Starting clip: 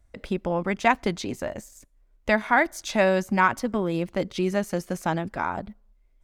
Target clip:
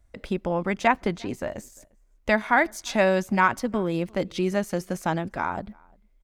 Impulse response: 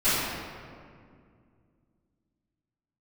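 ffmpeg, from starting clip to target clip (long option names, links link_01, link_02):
-filter_complex "[0:a]asettb=1/sr,asplit=3[link_01][link_02][link_03];[link_01]atrim=end=0.874[link_04];[link_02]atrim=start=0.87:end=1.56,asetpts=PTS-STARTPTS,afade=type=in:duration=0.004:curve=qsin,afade=type=out:start_time=0.686:duration=0.004:curve=qsin,acrossover=split=2800[link_05][link_06];[link_06]acompressor=threshold=-44dB:ratio=4:attack=1:release=60[link_07];[link_05][link_07]amix=inputs=2:normalize=0[link_08];[link_03]atrim=start=1.556[link_09];[link_04][link_08]acrossfade=duration=0.004:curve1=hsin:curve2=qsin[link_10];[link_10][link_09]acrossfade=duration=0.004:curve1=qsin:curve2=hsin,asplit=2[link_11][link_12];[link_12]adelay=349.9,volume=-28dB,highshelf=frequency=4000:gain=-7.87[link_13];[link_11][link_13]amix=inputs=2:normalize=0"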